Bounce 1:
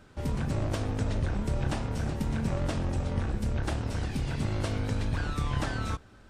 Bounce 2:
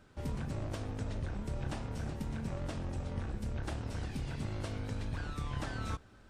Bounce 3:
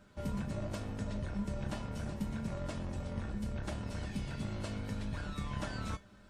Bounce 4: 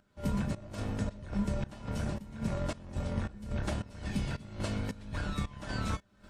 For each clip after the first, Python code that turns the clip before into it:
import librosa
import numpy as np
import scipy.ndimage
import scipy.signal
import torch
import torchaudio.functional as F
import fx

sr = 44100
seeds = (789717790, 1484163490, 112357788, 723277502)

y1 = fx.rider(x, sr, range_db=10, speed_s=0.5)
y1 = y1 * 10.0 ** (-8.0 / 20.0)
y2 = fx.comb_fb(y1, sr, f0_hz=200.0, decay_s=0.19, harmonics='odd', damping=0.0, mix_pct=80)
y2 = y2 * 10.0 ** (10.5 / 20.0)
y3 = fx.volume_shaper(y2, sr, bpm=110, per_beat=1, depth_db=-17, release_ms=233.0, shape='slow start')
y3 = y3 * 10.0 ** (5.5 / 20.0)